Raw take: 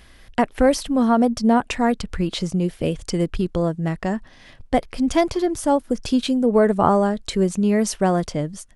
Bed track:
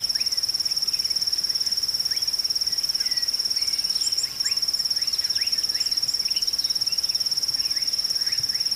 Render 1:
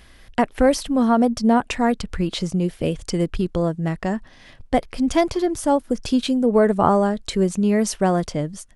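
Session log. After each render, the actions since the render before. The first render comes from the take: nothing audible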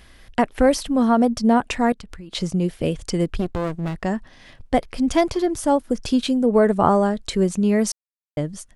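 1.92–2.35 compressor 12:1, threshold -34 dBFS; 3.39–3.96 running maximum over 33 samples; 7.92–8.37 mute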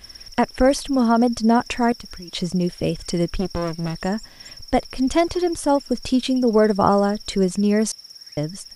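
add bed track -17.5 dB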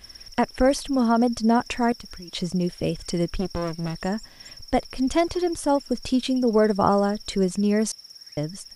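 gain -3 dB

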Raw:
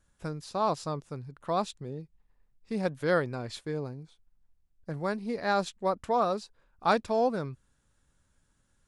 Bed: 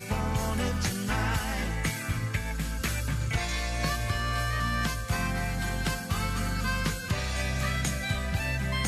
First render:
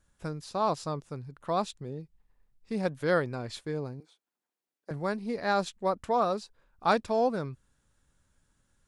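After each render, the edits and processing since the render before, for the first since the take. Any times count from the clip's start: 4–4.91 HPF 290 Hz 24 dB/oct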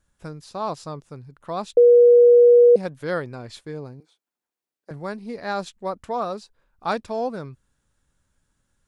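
1.77–2.76 bleep 481 Hz -8.5 dBFS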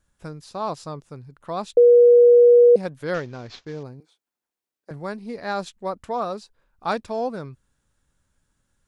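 3.14–3.83 CVSD 32 kbps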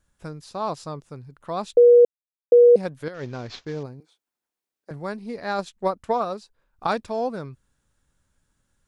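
2.05–2.52 mute; 3.08–3.86 negative-ratio compressor -32 dBFS; 5.58–6.87 transient shaper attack +7 dB, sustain -3 dB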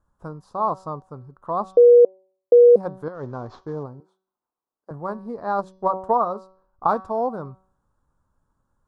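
resonant high shelf 1600 Hz -13 dB, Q 3; de-hum 188.7 Hz, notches 33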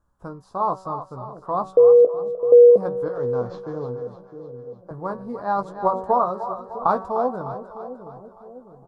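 doubler 16 ms -8 dB; split-band echo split 530 Hz, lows 0.656 s, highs 0.302 s, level -10 dB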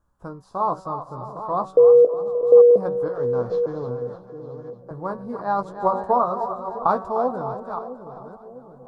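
reverse delay 0.523 s, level -11 dB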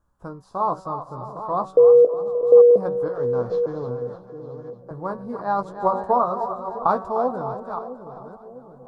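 nothing audible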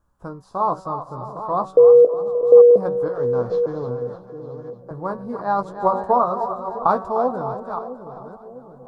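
gain +2 dB

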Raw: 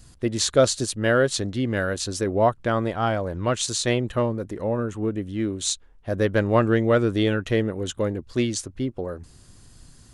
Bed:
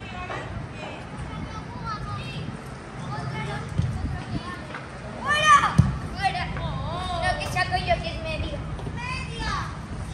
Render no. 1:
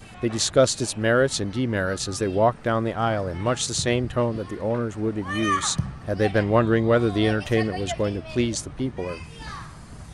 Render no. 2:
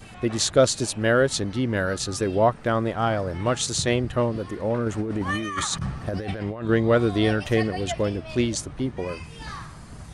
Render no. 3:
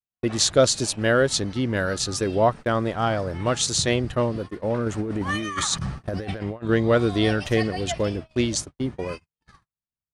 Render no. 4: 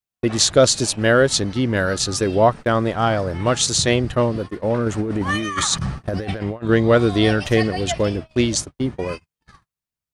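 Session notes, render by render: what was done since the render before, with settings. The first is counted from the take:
add bed -8.5 dB
4.86–6.69 negative-ratio compressor -28 dBFS
gate -31 dBFS, range -60 dB; dynamic EQ 5100 Hz, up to +4 dB, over -43 dBFS, Q 0.93
gain +4.5 dB; limiter -3 dBFS, peak gain reduction 1.5 dB

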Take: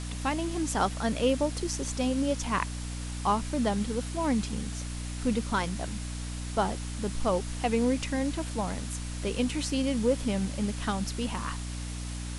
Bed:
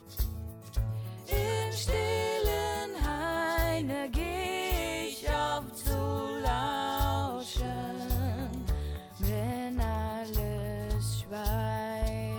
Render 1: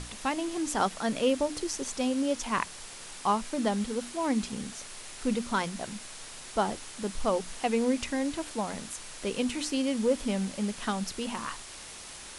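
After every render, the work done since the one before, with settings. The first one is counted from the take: notches 60/120/180/240/300 Hz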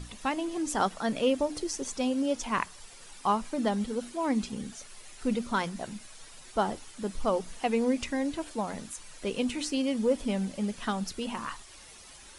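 denoiser 10 dB, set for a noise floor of -45 dBFS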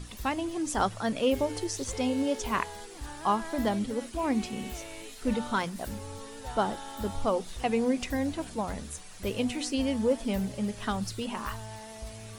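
add bed -10.5 dB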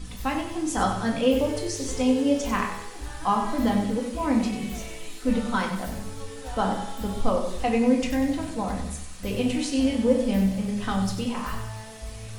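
thinning echo 95 ms, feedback 49%, high-pass 420 Hz, level -9 dB; shoebox room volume 450 m³, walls furnished, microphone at 2 m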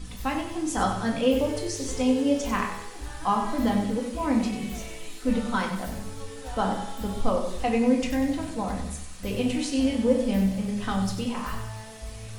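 gain -1 dB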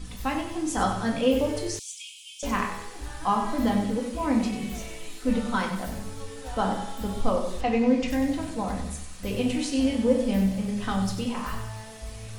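1.79–2.43 rippled Chebyshev high-pass 2300 Hz, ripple 6 dB; 7.61–8.08 LPF 5500 Hz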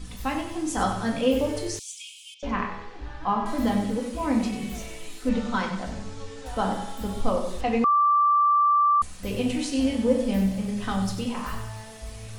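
2.34–3.46 air absorption 220 m; 5.29–6.46 LPF 7500 Hz 24 dB/oct; 7.84–9.02 bleep 1170 Hz -16.5 dBFS

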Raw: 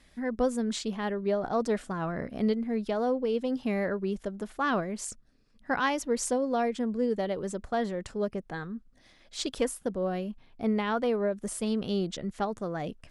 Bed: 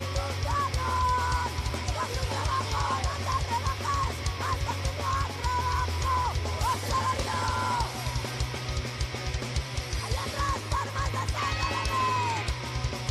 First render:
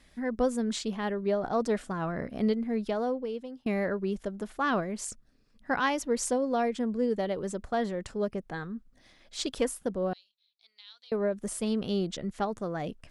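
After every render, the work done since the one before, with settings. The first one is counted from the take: 2.88–3.66 fade out linear, to -23 dB; 10.13–11.12 ladder band-pass 4200 Hz, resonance 80%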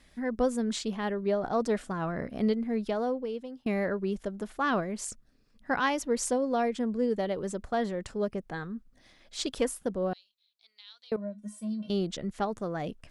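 11.16–11.9 resonator 210 Hz, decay 0.15 s, harmonics odd, mix 100%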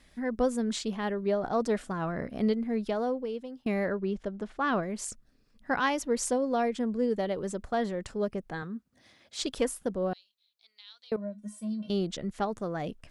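3.92–4.83 air absorption 97 m; 8.62–9.42 HPF 74 Hz 24 dB/oct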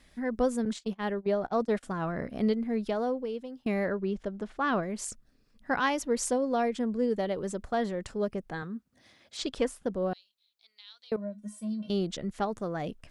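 0.65–1.83 gate -34 dBFS, range -26 dB; 9.37–9.93 air absorption 57 m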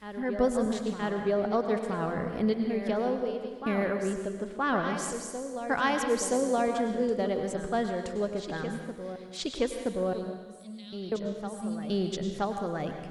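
reverse echo 0.973 s -9.5 dB; plate-style reverb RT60 1.4 s, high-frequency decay 0.9×, pre-delay 85 ms, DRR 5.5 dB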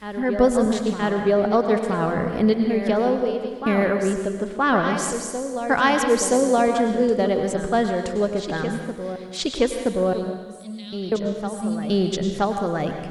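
gain +8.5 dB

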